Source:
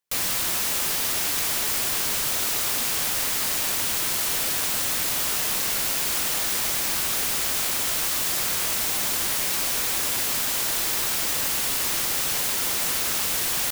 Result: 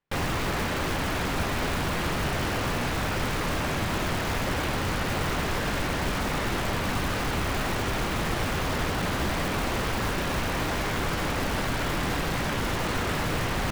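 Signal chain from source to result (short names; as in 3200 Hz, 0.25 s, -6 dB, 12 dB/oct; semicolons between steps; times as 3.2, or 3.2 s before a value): self-modulated delay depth 0.41 ms; LPF 2300 Hz 12 dB/oct; low shelf 250 Hz +11.5 dB; de-hum 221.2 Hz, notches 36; in parallel at -6.5 dB: wrapped overs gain 28 dB; on the sum: gain +2.5 dB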